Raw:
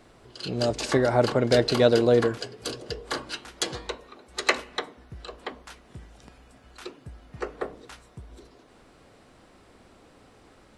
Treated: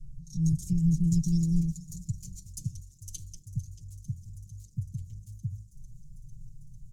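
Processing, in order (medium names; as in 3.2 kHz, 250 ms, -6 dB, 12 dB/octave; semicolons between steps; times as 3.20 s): gliding tape speed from 132% -> 179%; elliptic band-stop 130–6800 Hz, stop band 80 dB; tilt EQ -4 dB/octave; comb 6.4 ms, depth 99%; feedback echo behind a high-pass 449 ms, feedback 78%, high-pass 5.5 kHz, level -14.5 dB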